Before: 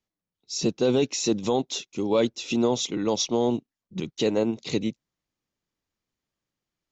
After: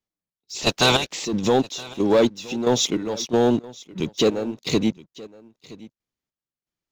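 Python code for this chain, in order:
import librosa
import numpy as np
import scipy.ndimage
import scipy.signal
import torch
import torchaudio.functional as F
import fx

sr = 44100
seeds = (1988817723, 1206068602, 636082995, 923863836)

y = fx.spec_clip(x, sr, under_db=26, at=(0.54, 1.24), fade=0.02)
y = fx.leveller(y, sr, passes=2)
y = fx.chopper(y, sr, hz=1.5, depth_pct=65, duty_pct=45)
y = y + 10.0 ** (-20.5 / 20.0) * np.pad(y, (int(970 * sr / 1000.0), 0))[:len(y)]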